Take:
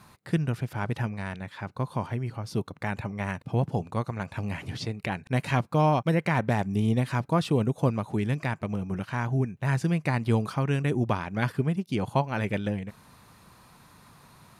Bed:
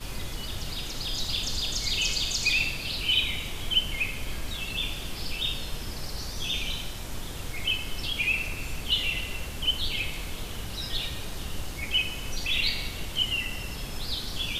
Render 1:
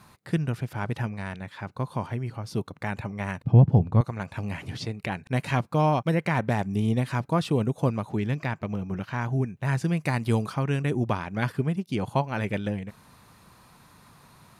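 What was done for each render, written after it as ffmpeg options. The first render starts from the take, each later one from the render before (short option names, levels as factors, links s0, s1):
-filter_complex "[0:a]asettb=1/sr,asplit=3[s0][s1][s2];[s0]atrim=end=3.434[s3];[s1]atrim=start=3.43:end=4.01,asetpts=PTS-STARTPTS,afade=t=in:d=0.004:c=qsin,afade=t=out:st=0.576:d=0.004:c=qsin,aemphasis=mode=reproduction:type=riaa[s4];[s2]atrim=start=4.006[s5];[s3][s4]acrossfade=d=0.004:c1=hsin:c2=qsin[s6];[s6][s5]acrossfade=d=0.004:c1=qsin:c2=hsin,asettb=1/sr,asplit=3[s7][s8][s9];[s7]atrim=end=8.094[s10];[s8]atrim=start=8.09:end=9.22,asetpts=PTS-STARTPTS,afade=t=in:d=0.004:c=qsin,afade=t=out:st=1.126:d=0.004:c=qsin,equalizer=f=9300:w=2.6:g=-11.5[s11];[s9]atrim=start=9.216[s12];[s10][s11]acrossfade=d=0.004:c1=hsin:c2=qsin[s13];[s13][s12]acrossfade=d=0.004:c1=qsin:c2=hsin,asettb=1/sr,asplit=3[s14][s15][s16];[s14]atrim=end=9.974[s17];[s15]atrim=start=9.97:end=10.46,asetpts=PTS-STARTPTS,afade=t=in:d=0.004:c=qsin,afade=t=out:st=0.486:d=0.004:c=qsin,highshelf=f=5700:g=8.5[s18];[s16]atrim=start=10.456[s19];[s17][s18]acrossfade=d=0.004:c1=hsin:c2=qsin[s20];[s20][s19]acrossfade=d=0.004:c1=qsin:c2=hsin"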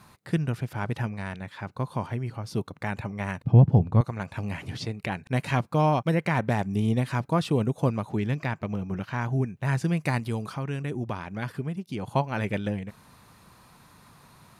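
-filter_complex "[0:a]asettb=1/sr,asplit=3[s0][s1][s2];[s0]atrim=end=10.204[s3];[s1]atrim=start=10.2:end=12.13,asetpts=PTS-STARTPTS,afade=t=in:d=0.004:c=qsin,afade=t=out:st=1.926:d=0.004:c=qsin,acompressor=threshold=0.0158:ratio=1.5:attack=3.2:release=140:knee=1:detection=peak[s4];[s2]atrim=start=12.126[s5];[s3][s4]acrossfade=d=0.004:c1=hsin:c2=qsin[s6];[s6][s5]acrossfade=d=0.004:c1=qsin:c2=hsin"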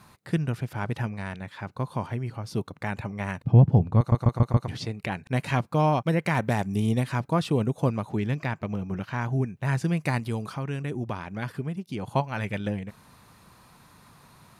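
-filter_complex "[0:a]asettb=1/sr,asplit=3[s0][s1][s2];[s0]atrim=end=6.254[s3];[s1]atrim=start=6.25:end=7.04,asetpts=PTS-STARTPTS,afade=t=in:d=0.004:c=qsin,afade=t=out:st=0.786:d=0.004:c=qsin,highshelf=f=5700:g=7.5[s4];[s2]atrim=start=7.036[s5];[s3][s4]acrossfade=d=0.004:c1=hsin:c2=qsin[s6];[s6][s5]acrossfade=d=0.004:c1=qsin:c2=hsin,asettb=1/sr,asplit=3[s7][s8][s9];[s7]atrim=end=12.204[s10];[s8]atrim=start=12.2:end=12.6,asetpts=PTS-STARTPTS,afade=t=in:d=0.004:c=qsin,afade=t=out:st=0.396:d=0.004:c=qsin,equalizer=f=350:t=o:w=1.5:g=-6[s11];[s9]atrim=start=12.596[s12];[s10][s11]acrossfade=d=0.004:c1=hsin:c2=qsin[s13];[s13][s12]acrossfade=d=0.004:c1=qsin:c2=hsin,asplit=6[s14][s15][s16][s17][s18][s19];[s14]atrim=end=4.122[s20];[s15]atrim=start=3.978:end=4.122[s21];[s16]atrim=start=3.978:end=4.122[s22];[s17]atrim=start=3.978:end=4.122[s23];[s18]atrim=start=3.978:end=4.122[s24];[s19]atrim=start=4.678[s25];[s20][s21]acrossfade=d=0.004:c1=hsin:c2=hsin[s26];[s26][s22]acrossfade=d=0.004:c1=hsin:c2=hsin[s27];[s27][s23]acrossfade=d=0.004:c1=hsin:c2=hsin[s28];[s28][s24]acrossfade=d=0.004:c1=hsin:c2=hsin[s29];[s29][s25]acrossfade=d=0.004:c1=hsin:c2=hsin"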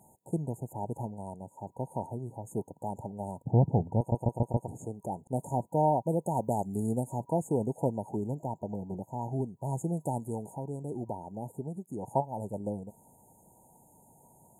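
-af "lowshelf=f=220:g=-11.5,afftfilt=real='re*(1-between(b*sr/4096,960,6500))':imag='im*(1-between(b*sr/4096,960,6500))':win_size=4096:overlap=0.75"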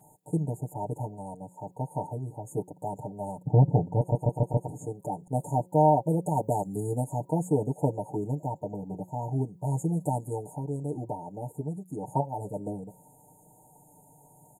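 -af "aecho=1:1:6.7:0.95,bandreject=f=180.9:t=h:w=4,bandreject=f=361.8:t=h:w=4,bandreject=f=542.7:t=h:w=4"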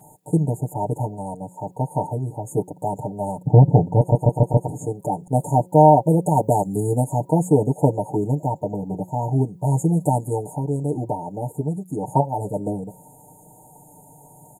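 -af "volume=2.82,alimiter=limit=0.794:level=0:latency=1"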